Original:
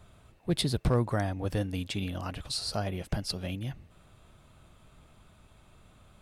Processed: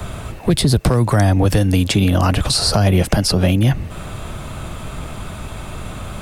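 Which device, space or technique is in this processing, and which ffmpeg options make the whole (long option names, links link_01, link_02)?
mastering chain: -filter_complex "[0:a]equalizer=frequency=3800:width_type=o:width=0.77:gain=-2.5,acrossover=split=110|220|1800|3600[link_01][link_02][link_03][link_04][link_05];[link_01]acompressor=threshold=-38dB:ratio=4[link_06];[link_02]acompressor=threshold=-40dB:ratio=4[link_07];[link_03]acompressor=threshold=-39dB:ratio=4[link_08];[link_04]acompressor=threshold=-55dB:ratio=4[link_09];[link_05]acompressor=threshold=-42dB:ratio=4[link_10];[link_06][link_07][link_08][link_09][link_10]amix=inputs=5:normalize=0,acompressor=threshold=-47dB:ratio=1.5,asoftclip=type=hard:threshold=-31dB,alimiter=level_in=33dB:limit=-1dB:release=50:level=0:latency=1,volume=-4.5dB"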